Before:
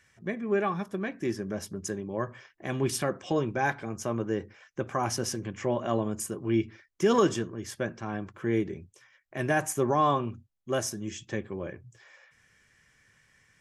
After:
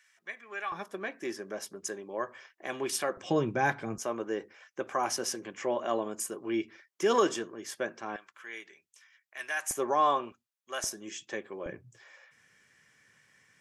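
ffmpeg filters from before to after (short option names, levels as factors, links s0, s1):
-af "asetnsamples=n=441:p=0,asendcmd='0.72 highpass f 450;3.17 highpass f 110;3.98 highpass f 380;8.16 highpass f 1500;9.71 highpass f 470;10.32 highpass f 1000;10.84 highpass f 430;11.66 highpass f 150',highpass=1300"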